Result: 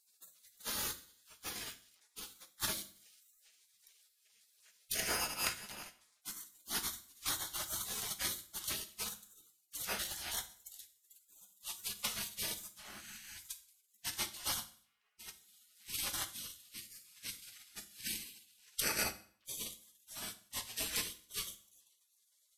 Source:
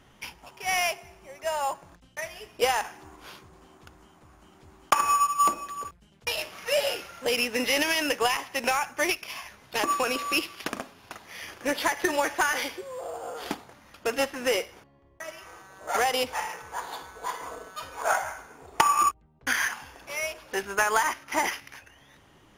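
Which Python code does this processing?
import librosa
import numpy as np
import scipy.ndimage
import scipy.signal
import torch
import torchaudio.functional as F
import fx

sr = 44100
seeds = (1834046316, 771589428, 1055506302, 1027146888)

y = fx.pitch_glide(x, sr, semitones=-3.0, runs='starting unshifted')
y = fx.spec_gate(y, sr, threshold_db=-30, keep='weak')
y = fx.rev_fdn(y, sr, rt60_s=0.49, lf_ratio=1.1, hf_ratio=0.95, size_ms=28.0, drr_db=8.0)
y = y * librosa.db_to_amplitude(5.0)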